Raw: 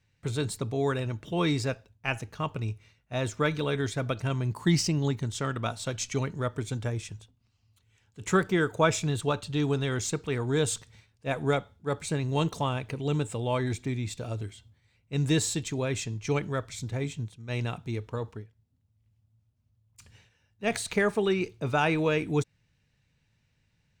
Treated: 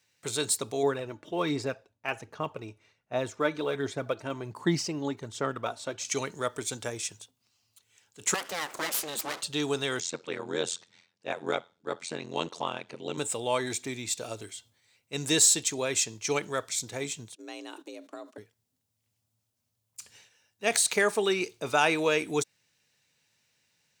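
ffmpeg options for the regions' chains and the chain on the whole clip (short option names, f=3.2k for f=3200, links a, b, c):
-filter_complex "[0:a]asettb=1/sr,asplit=3[a][b][c];[a]atrim=end=0.834[d];[b]atrim=start=0.83:end=6.05,asetpts=PTS-STARTPTS,afade=t=in:d=0.004:c=qsin,afade=t=out:st=5.216:d=0.004:c=qsin,lowpass=f=1.1k:p=1,aphaser=in_gain=1:out_gain=1:delay=3.5:decay=0.37:speed=1.3:type=sinusoidal[e];[c]atrim=start=6.046[f];[d][e]acrossfade=d=0.004:c1=hsin:c2=qsin[g];[g][f]acrossfade=d=0.004:c1=qsin:c2=hsin,asettb=1/sr,asplit=3[h][i][j];[h]atrim=end=8.344[k];[i]atrim=start=8.34:end=9.42,asetpts=PTS-STARTPTS,afade=t=in:d=0.004:c=qsin,afade=t=out:st=1.076:d=0.004:c=qsin,equalizer=f=960:w=0.68:g=6,acompressor=threshold=-29dB:ratio=3:attack=3.2:release=140:knee=1:detection=peak,aeval=exprs='abs(val(0))':c=same[l];[j]atrim=start=9.416[m];[k][l]acrossfade=d=0.004:c1=hsin:c2=qsin[n];[n][m]acrossfade=d=0.004:c1=qsin:c2=hsin,asettb=1/sr,asplit=3[o][p][q];[o]atrim=end=10.004[r];[p]atrim=start=10:end=13.18,asetpts=PTS-STARTPTS,afade=t=in:d=0.004:c=qsin,afade=t=out:st=3.176:d=0.004:c=qsin,tremolo=f=86:d=0.974,highpass=100,lowpass=4.5k[s];[q]atrim=start=13.176[t];[r][s]acrossfade=d=0.004:c1=hsin:c2=qsin[u];[u][t]acrossfade=d=0.004:c1=qsin:c2=hsin,asettb=1/sr,asplit=3[v][w][x];[v]atrim=end=17.354[y];[w]atrim=start=17.35:end=18.38,asetpts=PTS-STARTPTS,afade=t=in:d=0.004:c=qsin,afade=t=out:st=1.026:d=0.004:c=qsin,agate=range=-12dB:threshold=-48dB:ratio=16:release=100:detection=peak,acompressor=threshold=-38dB:ratio=12:attack=3.2:release=140:knee=1:detection=peak,afreqshift=170[z];[x]atrim=start=18.376[aa];[y][z]acrossfade=d=0.004:c1=hsin:c2=qsin[ab];[ab][aa]acrossfade=d=0.004:c1=qsin:c2=hsin,highpass=110,bass=f=250:g=-14,treble=f=4k:g=10,volume=2dB"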